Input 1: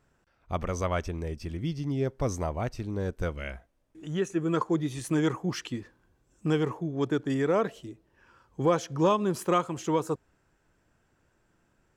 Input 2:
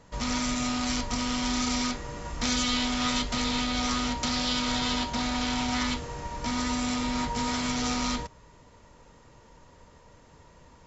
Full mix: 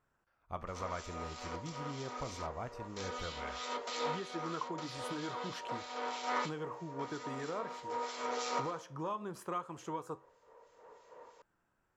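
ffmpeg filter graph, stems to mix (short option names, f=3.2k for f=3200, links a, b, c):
-filter_complex "[0:a]acompressor=threshold=-26dB:ratio=6,flanger=delay=8.6:depth=6.6:regen=-76:speed=0.18:shape=triangular,volume=-9dB,asplit=2[a][b];[1:a]acrossover=split=2300[c][d];[c]aeval=exprs='val(0)*(1-0.7/2+0.7/2*cos(2*PI*3.1*n/s))':c=same[e];[d]aeval=exprs='val(0)*(1-0.7/2-0.7/2*cos(2*PI*3.1*n/s))':c=same[f];[e][f]amix=inputs=2:normalize=0,highpass=f=460:t=q:w=4.6,adelay=550,volume=-5.5dB[g];[b]apad=whole_len=503543[h];[g][h]sidechaincompress=threshold=-52dB:ratio=8:attack=32:release=1210[i];[a][i]amix=inputs=2:normalize=0,equalizer=f=1.1k:w=0.88:g=9"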